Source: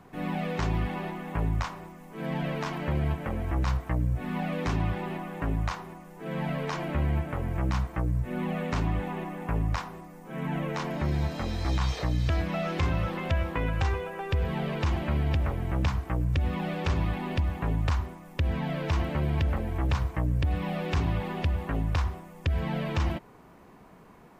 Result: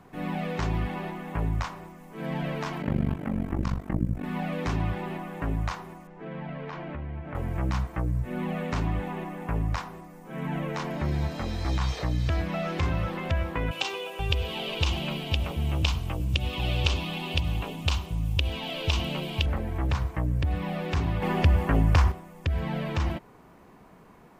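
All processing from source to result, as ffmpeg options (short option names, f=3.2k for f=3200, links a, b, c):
-filter_complex "[0:a]asettb=1/sr,asplit=3[a][b][c];[a]atrim=end=2.824[d];[b]atrim=start=2.82:end=4.24,asetpts=PTS-STARTPTS,afade=t=in:d=0.004:c=qsin,afade=t=out:st=1.416:d=0.004:c=qsin,equalizer=f=220:t=o:w=1:g=12.5,tremolo=f=48:d=0.947[e];[c]atrim=start=4.236[f];[d][e]acrossfade=d=0.004:c1=hsin:c2=qsin[g];[g][f]acrossfade=d=0.004:c1=qsin:c2=hsin,asettb=1/sr,asplit=3[h][i][j];[h]atrim=end=6.074[k];[i]atrim=start=6.07:end=7.35,asetpts=PTS-STARTPTS,afade=t=in:d=0.004:c=qsin,afade=t=out:st=1.276:d=0.004:c=qsin,lowpass=3k,acompressor=threshold=-34dB:ratio=3:attack=3.2:release=140:knee=1:detection=peak[l];[j]atrim=start=7.346[m];[k][l]acrossfade=d=0.004:c1=hsin:c2=qsin[n];[n][m]acrossfade=d=0.004:c1=qsin:c2=hsin,asettb=1/sr,asplit=3[o][p][q];[o]atrim=end=13.714[r];[p]atrim=start=13.71:end=19.46,asetpts=PTS-STARTPTS,afade=t=in:d=0.004:c=qsin,afade=t=out:st=5.746:d=0.004:c=qsin,highshelf=f=2.3k:t=q:w=3:g=7.5,acrossover=split=230[s][t];[s]adelay=480[u];[u][t]amix=inputs=2:normalize=0,atrim=end_sample=253575[v];[q]atrim=start=19.456[w];[r][v]acrossfade=d=0.004:c1=hsin:c2=qsin[x];[x][w]acrossfade=d=0.004:c1=qsin:c2=hsin,asettb=1/sr,asplit=3[y][z][aa];[y]atrim=end=21.224[ab];[z]atrim=start=21.22:end=22.12,asetpts=PTS-STARTPTS,afade=t=in:d=0.004:c=qsin,afade=t=out:st=0.896:d=0.004:c=qsin,equalizer=f=3.8k:w=7.7:g=-7,acontrast=83[ac];[aa]atrim=start=22.116[ad];[ab][ac]acrossfade=d=0.004:c1=hsin:c2=qsin[ae];[ae][ad]acrossfade=d=0.004:c1=qsin:c2=hsin"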